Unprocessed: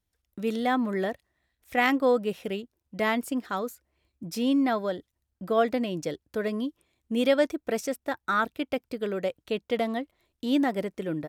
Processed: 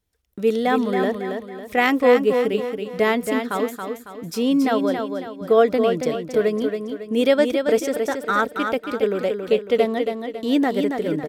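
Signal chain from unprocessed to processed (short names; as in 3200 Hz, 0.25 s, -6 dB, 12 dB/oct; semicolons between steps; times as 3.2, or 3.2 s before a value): bell 440 Hz +8 dB 0.25 oct; on a send: feedback echo 0.276 s, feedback 41%, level -6 dB; on the sum: gain +4.5 dB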